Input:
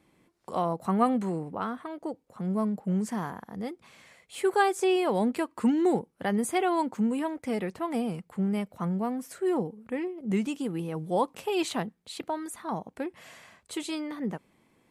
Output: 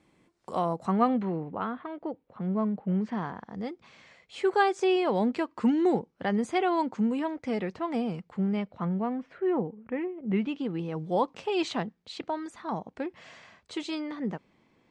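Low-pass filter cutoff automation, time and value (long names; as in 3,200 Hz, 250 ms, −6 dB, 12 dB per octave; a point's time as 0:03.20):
low-pass filter 24 dB per octave
0:00.77 9,000 Hz
0:01.25 3,500 Hz
0:03.02 3,500 Hz
0:03.52 6,100 Hz
0:08.25 6,100 Hz
0:09.42 2,700 Hz
0:10.20 2,700 Hz
0:10.93 6,100 Hz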